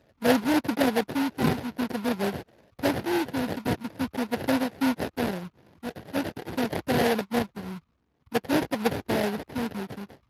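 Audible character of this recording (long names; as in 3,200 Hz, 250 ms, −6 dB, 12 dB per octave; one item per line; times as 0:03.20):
phaser sweep stages 8, 0.48 Hz, lowest notch 510–2,400 Hz
aliases and images of a low sample rate 1,200 Hz, jitter 20%
Speex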